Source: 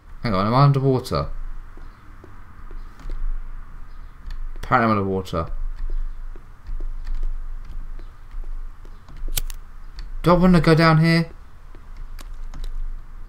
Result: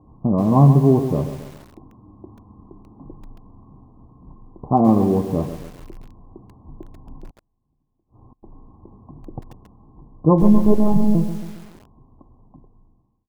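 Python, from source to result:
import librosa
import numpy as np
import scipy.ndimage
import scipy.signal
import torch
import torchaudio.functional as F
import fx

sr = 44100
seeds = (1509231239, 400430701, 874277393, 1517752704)

y = fx.fade_out_tail(x, sr, length_s=0.96)
y = scipy.signal.sosfilt(scipy.signal.butter(2, 140.0, 'highpass', fs=sr, output='sos'), y)
y = fx.tilt_eq(y, sr, slope=-3.0)
y = fx.rider(y, sr, range_db=4, speed_s=2.0)
y = fx.gate_flip(y, sr, shuts_db=-32.0, range_db=-30, at=(7.3, 8.43))
y = scipy.signal.sosfilt(scipy.signal.cheby1(6, 6, 1100.0, 'lowpass', fs=sr, output='sos'), y)
y = fx.lpc_monotone(y, sr, seeds[0], pitch_hz=210.0, order=10, at=(10.42, 11.15))
y = fx.echo_crushed(y, sr, ms=137, feedback_pct=55, bits=6, wet_db=-10.0)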